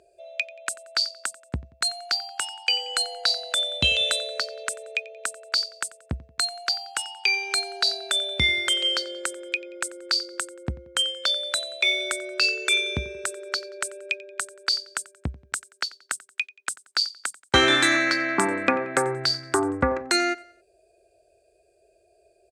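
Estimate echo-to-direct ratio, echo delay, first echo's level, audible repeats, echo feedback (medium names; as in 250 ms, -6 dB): -20.0 dB, 90 ms, -21.0 dB, 2, 42%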